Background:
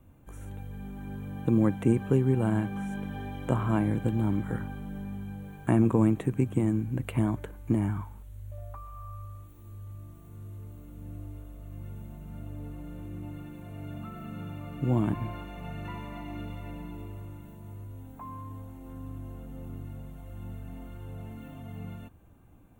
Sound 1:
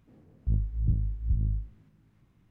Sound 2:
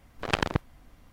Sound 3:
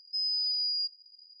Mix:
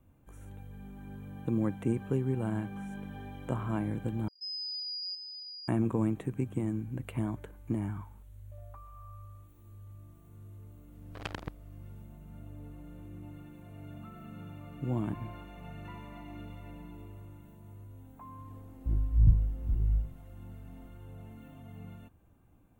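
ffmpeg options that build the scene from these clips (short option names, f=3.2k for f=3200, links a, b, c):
-filter_complex "[0:a]volume=-6.5dB[a];[3:a]aecho=1:1:600:0.473[b];[1:a]aphaser=in_gain=1:out_gain=1:delay=4.3:decay=0.72:speed=1.2:type=triangular[c];[a]asplit=2[d][e];[d]atrim=end=4.284[f];[b]atrim=end=1.4,asetpts=PTS-STARTPTS,volume=-8dB[g];[e]atrim=start=5.676[h];[2:a]atrim=end=1.12,asetpts=PTS-STARTPTS,volume=-14dB,afade=t=in:d=0.004:c=hsin,afade=t=out:st=1.116:d=0.004:c=hsin,adelay=10920[i];[c]atrim=end=2.5,asetpts=PTS-STARTPTS,volume=-3.5dB,afade=t=in:d=0.004:c=hsin,afade=t=out:st=2.496:d=0.004:c=hsin,adelay=18390[j];[f][g]acrossfade=d=0.004:c1=hsin:c2=hsin[k];[k][h]acrossfade=d=0.004:c1=hsin:c2=hsin[l];[l][i][j]amix=inputs=3:normalize=0"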